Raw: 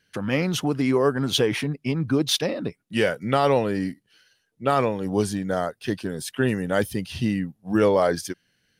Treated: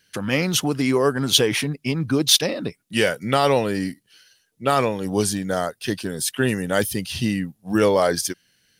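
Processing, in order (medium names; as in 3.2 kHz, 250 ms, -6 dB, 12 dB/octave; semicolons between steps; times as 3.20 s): treble shelf 3.2 kHz +10.5 dB; trim +1 dB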